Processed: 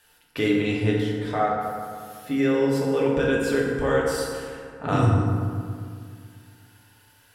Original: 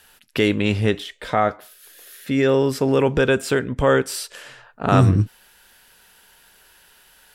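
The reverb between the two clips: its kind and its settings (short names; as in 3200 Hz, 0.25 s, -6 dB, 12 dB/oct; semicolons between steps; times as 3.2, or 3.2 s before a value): FDN reverb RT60 2.2 s, low-frequency decay 1.2×, high-frequency decay 0.45×, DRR -4 dB; gain -9.5 dB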